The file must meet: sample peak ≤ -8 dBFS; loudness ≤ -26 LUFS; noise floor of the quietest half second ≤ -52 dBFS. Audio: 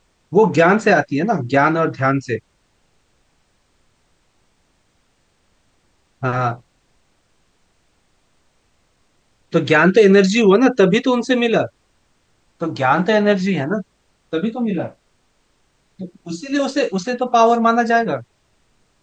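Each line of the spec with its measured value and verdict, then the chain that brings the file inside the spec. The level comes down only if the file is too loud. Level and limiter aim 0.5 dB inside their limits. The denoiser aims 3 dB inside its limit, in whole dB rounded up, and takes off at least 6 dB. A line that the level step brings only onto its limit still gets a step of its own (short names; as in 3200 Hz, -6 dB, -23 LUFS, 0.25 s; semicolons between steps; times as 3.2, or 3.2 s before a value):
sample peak -2.0 dBFS: fail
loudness -16.5 LUFS: fail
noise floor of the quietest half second -62 dBFS: OK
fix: gain -10 dB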